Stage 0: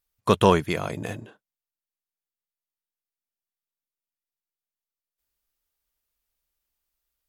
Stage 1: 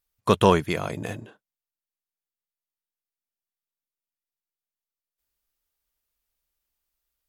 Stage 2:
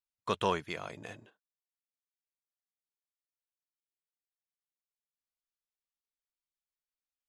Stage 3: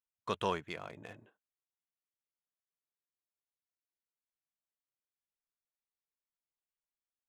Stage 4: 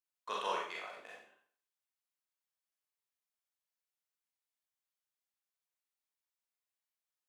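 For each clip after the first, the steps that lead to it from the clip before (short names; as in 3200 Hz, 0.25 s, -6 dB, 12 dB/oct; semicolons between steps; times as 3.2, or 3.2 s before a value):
nothing audible
LPF 7000 Hz 12 dB/oct; gate -43 dBFS, range -7 dB; low shelf 470 Hz -9.5 dB; gain -8.5 dB
Wiener smoothing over 9 samples; gain -3.5 dB
HPF 610 Hz 12 dB/oct; Schroeder reverb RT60 0.52 s, combs from 30 ms, DRR -3.5 dB; gain -4 dB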